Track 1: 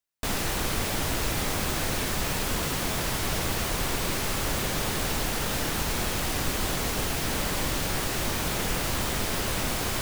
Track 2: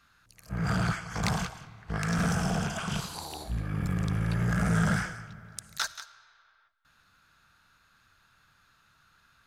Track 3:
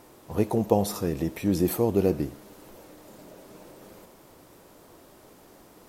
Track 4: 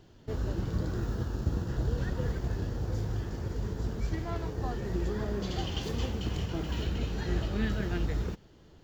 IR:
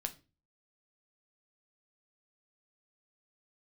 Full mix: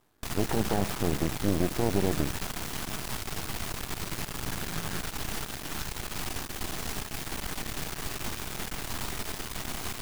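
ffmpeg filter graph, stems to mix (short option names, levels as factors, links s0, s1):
-filter_complex "[0:a]alimiter=limit=0.0794:level=0:latency=1:release=221,volume=1.12[s0];[1:a]volume=0.316[s1];[2:a]afwtdn=0.02,alimiter=limit=0.158:level=0:latency=1,volume=1.41[s2];[3:a]volume=0.188[s3];[s0][s1][s2][s3]amix=inputs=4:normalize=0,equalizer=f=530:t=o:w=0.22:g=-11.5,aeval=exprs='max(val(0),0)':c=same"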